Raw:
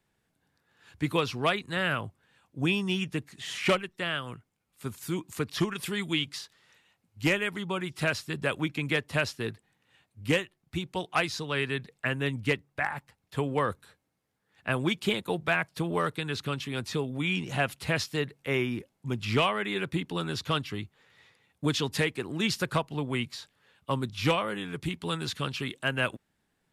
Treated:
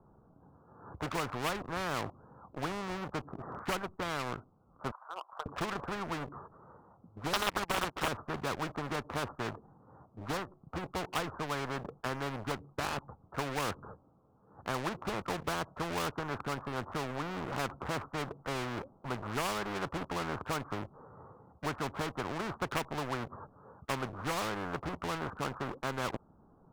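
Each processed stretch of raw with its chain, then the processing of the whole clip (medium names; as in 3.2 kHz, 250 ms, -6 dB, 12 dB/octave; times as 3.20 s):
4.91–5.46 s: steep high-pass 630 Hz 48 dB/octave + compression 16:1, threshold -41 dBFS
7.33–8.08 s: frequency weighting ITU-R 468 + waveshaping leveller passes 3 + loudspeaker Doppler distortion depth 0.93 ms
whole clip: steep low-pass 1.3 kHz 72 dB/octave; waveshaping leveller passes 1; spectrum-flattening compressor 4:1; trim -5.5 dB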